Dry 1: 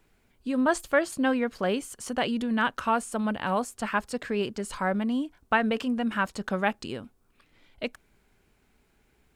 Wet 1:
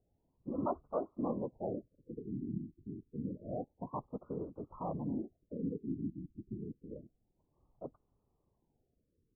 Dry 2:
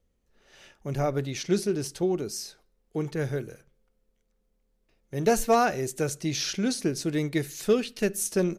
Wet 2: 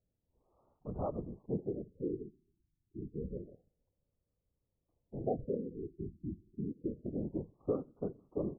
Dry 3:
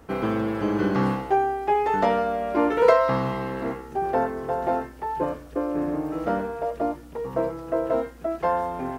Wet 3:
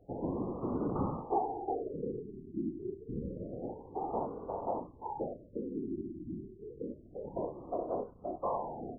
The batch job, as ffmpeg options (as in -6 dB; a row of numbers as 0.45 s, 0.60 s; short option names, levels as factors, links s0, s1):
-af "asuperstop=centerf=1400:order=12:qfactor=5,afftfilt=real='hypot(re,im)*cos(2*PI*random(0))':imag='hypot(re,im)*sin(2*PI*random(1))':win_size=512:overlap=0.75,afftfilt=real='re*lt(b*sr/1024,380*pow(1500/380,0.5+0.5*sin(2*PI*0.28*pts/sr)))':imag='im*lt(b*sr/1024,380*pow(1500/380,0.5+0.5*sin(2*PI*0.28*pts/sr)))':win_size=1024:overlap=0.75,volume=0.562"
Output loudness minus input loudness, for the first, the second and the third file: -13.5 LU, -13.0 LU, -13.5 LU